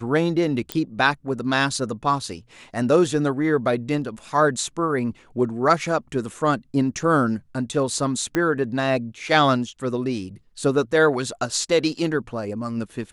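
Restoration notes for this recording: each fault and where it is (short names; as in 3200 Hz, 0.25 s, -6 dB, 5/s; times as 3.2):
0.72 pop -9 dBFS
8.35 pop -9 dBFS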